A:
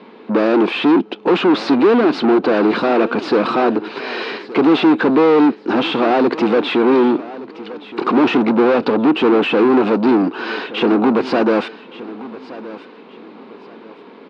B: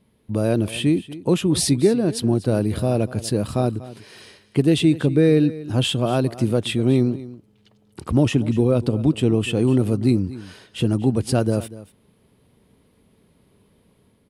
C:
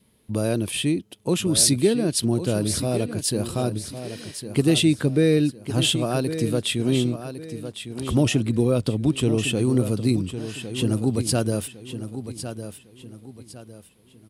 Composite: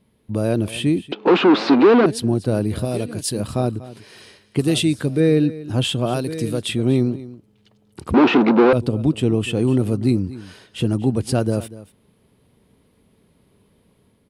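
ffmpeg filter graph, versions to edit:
-filter_complex "[0:a]asplit=2[a][b];[2:a]asplit=3[c][d][e];[1:a]asplit=6[f][g][h][i][j][k];[f]atrim=end=1.122[l];[a]atrim=start=1.118:end=2.062[m];[g]atrim=start=2.058:end=2.852[n];[c]atrim=start=2.848:end=3.402[o];[h]atrim=start=3.398:end=4.592[p];[d]atrim=start=4.588:end=5.202[q];[i]atrim=start=5.198:end=6.142[r];[e]atrim=start=6.138:end=6.692[s];[j]atrim=start=6.688:end=8.142[t];[b]atrim=start=8.138:end=8.732[u];[k]atrim=start=8.728[v];[l][m]acrossfade=d=0.004:c1=hsin:c2=hsin[w];[w][n]acrossfade=d=0.004:c1=hsin:c2=hsin[x];[x][o]acrossfade=d=0.004:c1=hsin:c2=hsin[y];[y][p]acrossfade=d=0.004:c1=hsin:c2=hsin[z];[z][q]acrossfade=d=0.004:c1=hsin:c2=hsin[aa];[aa][r]acrossfade=d=0.004:c1=hsin:c2=hsin[ab];[ab][s]acrossfade=d=0.004:c1=hsin:c2=hsin[ac];[ac][t]acrossfade=d=0.004:c1=hsin:c2=hsin[ad];[ad][u]acrossfade=d=0.004:c1=hsin:c2=hsin[ae];[ae][v]acrossfade=d=0.004:c1=hsin:c2=hsin"

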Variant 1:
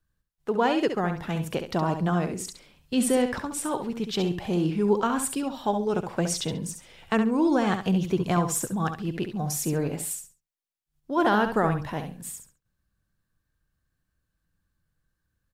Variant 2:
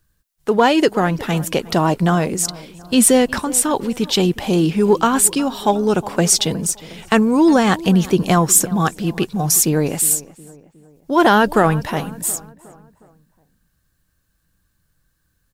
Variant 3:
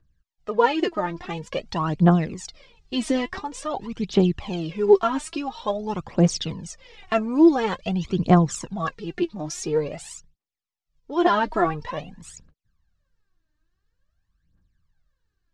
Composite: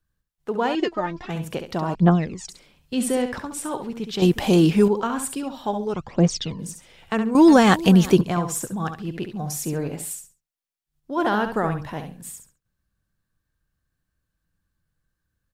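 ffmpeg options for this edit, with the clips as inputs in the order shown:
-filter_complex "[2:a]asplit=3[a][b][c];[1:a]asplit=2[d][e];[0:a]asplit=6[f][g][h][i][j][k];[f]atrim=end=0.752[l];[a]atrim=start=0.748:end=1.302[m];[g]atrim=start=1.298:end=1.952[n];[b]atrim=start=1.948:end=2.492[o];[h]atrim=start=2.488:end=4.222[p];[d]atrim=start=4.218:end=4.882[q];[i]atrim=start=4.878:end=5.942[r];[c]atrim=start=5.938:end=6.592[s];[j]atrim=start=6.588:end=7.352[t];[e]atrim=start=7.348:end=8.212[u];[k]atrim=start=8.208[v];[l][m]acrossfade=d=0.004:c1=hsin:c2=hsin[w];[w][n]acrossfade=d=0.004:c1=hsin:c2=hsin[x];[x][o]acrossfade=d=0.004:c1=hsin:c2=hsin[y];[y][p]acrossfade=d=0.004:c1=hsin:c2=hsin[z];[z][q]acrossfade=d=0.004:c1=hsin:c2=hsin[aa];[aa][r]acrossfade=d=0.004:c1=hsin:c2=hsin[ab];[ab][s]acrossfade=d=0.004:c1=hsin:c2=hsin[ac];[ac][t]acrossfade=d=0.004:c1=hsin:c2=hsin[ad];[ad][u]acrossfade=d=0.004:c1=hsin:c2=hsin[ae];[ae][v]acrossfade=d=0.004:c1=hsin:c2=hsin"

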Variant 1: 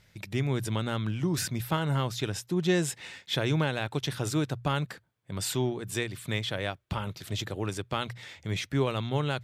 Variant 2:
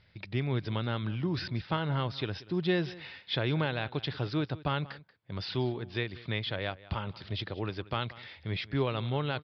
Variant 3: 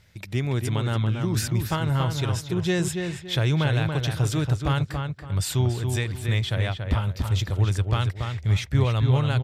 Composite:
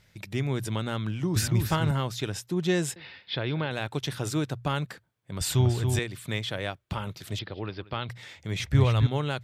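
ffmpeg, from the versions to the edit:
-filter_complex "[2:a]asplit=3[a][b][c];[1:a]asplit=2[d][e];[0:a]asplit=6[f][g][h][i][j][k];[f]atrim=end=1.362[l];[a]atrim=start=1.358:end=1.912[m];[g]atrim=start=1.908:end=2.962[n];[d]atrim=start=2.958:end=3.712[o];[h]atrim=start=3.708:end=5.412[p];[b]atrim=start=5.408:end=5.992[q];[i]atrim=start=5.988:end=7.392[r];[e]atrim=start=7.388:end=8.092[s];[j]atrim=start=8.088:end=8.602[t];[c]atrim=start=8.598:end=9.072[u];[k]atrim=start=9.068[v];[l][m]acrossfade=d=0.004:c1=hsin:c2=hsin[w];[w][n]acrossfade=d=0.004:c1=hsin:c2=hsin[x];[x][o]acrossfade=d=0.004:c1=hsin:c2=hsin[y];[y][p]acrossfade=d=0.004:c1=hsin:c2=hsin[z];[z][q]acrossfade=d=0.004:c1=hsin:c2=hsin[aa];[aa][r]acrossfade=d=0.004:c1=hsin:c2=hsin[ab];[ab][s]acrossfade=d=0.004:c1=hsin:c2=hsin[ac];[ac][t]acrossfade=d=0.004:c1=hsin:c2=hsin[ad];[ad][u]acrossfade=d=0.004:c1=hsin:c2=hsin[ae];[ae][v]acrossfade=d=0.004:c1=hsin:c2=hsin"

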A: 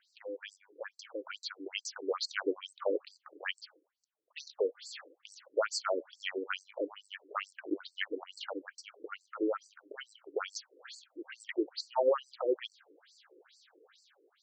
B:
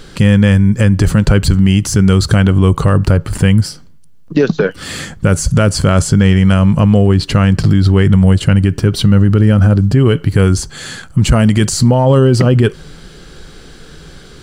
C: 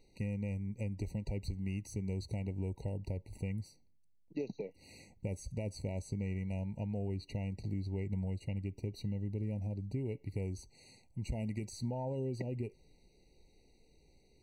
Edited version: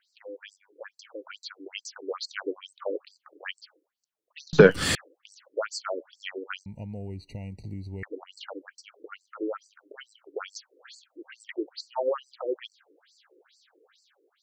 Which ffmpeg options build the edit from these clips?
-filter_complex "[0:a]asplit=3[a][b][c];[a]atrim=end=4.532[d];[1:a]atrim=start=4.528:end=4.952[e];[b]atrim=start=4.948:end=6.662[f];[2:a]atrim=start=6.658:end=8.032[g];[c]atrim=start=8.028[h];[d][e]acrossfade=d=0.004:c1=hsin:c2=hsin[i];[i][f]acrossfade=d=0.004:c1=hsin:c2=hsin[j];[j][g]acrossfade=d=0.004:c1=hsin:c2=hsin[k];[k][h]acrossfade=d=0.004:c1=hsin:c2=hsin"

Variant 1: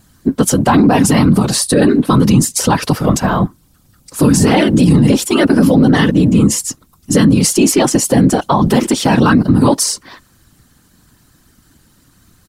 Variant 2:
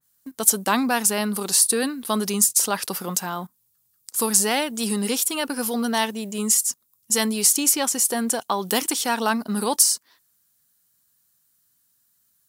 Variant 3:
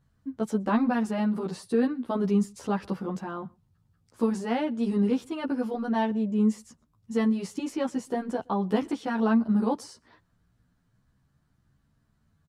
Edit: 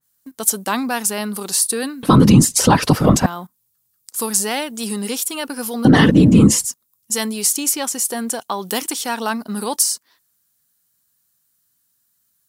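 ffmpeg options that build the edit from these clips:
-filter_complex "[0:a]asplit=2[a][b];[1:a]asplit=3[c][d][e];[c]atrim=end=2.032[f];[a]atrim=start=2.028:end=3.262[g];[d]atrim=start=3.258:end=5.852[h];[b]atrim=start=5.848:end=6.652[i];[e]atrim=start=6.648[j];[f][g]acrossfade=d=0.004:c1=hsin:c2=hsin[k];[k][h]acrossfade=d=0.004:c1=hsin:c2=hsin[l];[l][i]acrossfade=d=0.004:c1=hsin:c2=hsin[m];[m][j]acrossfade=d=0.004:c1=hsin:c2=hsin"

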